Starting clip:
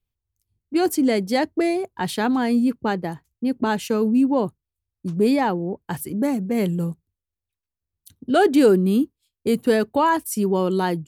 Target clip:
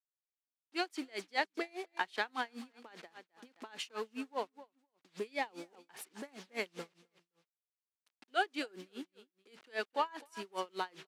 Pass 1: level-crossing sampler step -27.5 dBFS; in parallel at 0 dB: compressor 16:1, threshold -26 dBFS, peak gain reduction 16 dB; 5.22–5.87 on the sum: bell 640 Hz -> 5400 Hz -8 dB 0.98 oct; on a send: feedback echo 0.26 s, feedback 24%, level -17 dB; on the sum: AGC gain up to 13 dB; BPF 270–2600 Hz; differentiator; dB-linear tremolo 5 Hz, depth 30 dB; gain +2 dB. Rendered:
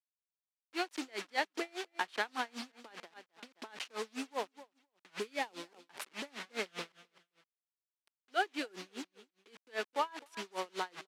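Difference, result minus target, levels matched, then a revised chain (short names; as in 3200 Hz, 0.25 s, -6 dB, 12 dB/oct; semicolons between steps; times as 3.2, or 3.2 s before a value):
level-crossing sampler: distortion +10 dB
level-crossing sampler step -38 dBFS; in parallel at 0 dB: compressor 16:1, threshold -26 dBFS, peak gain reduction 16 dB; 5.22–5.87 on the sum: bell 640 Hz -> 5400 Hz -8 dB 0.98 oct; on a send: feedback echo 0.26 s, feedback 24%, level -17 dB; on the sum: AGC gain up to 13 dB; BPF 270–2600 Hz; differentiator; dB-linear tremolo 5 Hz, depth 30 dB; gain +2 dB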